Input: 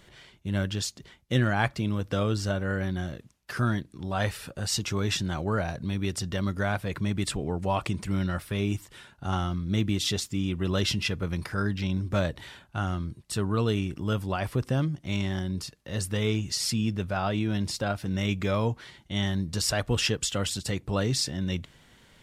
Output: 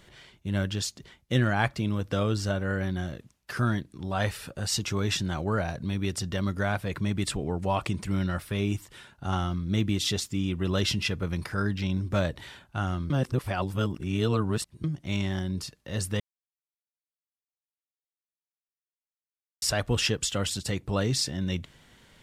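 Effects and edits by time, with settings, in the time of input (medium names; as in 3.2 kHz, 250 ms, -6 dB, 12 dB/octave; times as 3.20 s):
13.10–14.84 s: reverse
16.20–19.62 s: mute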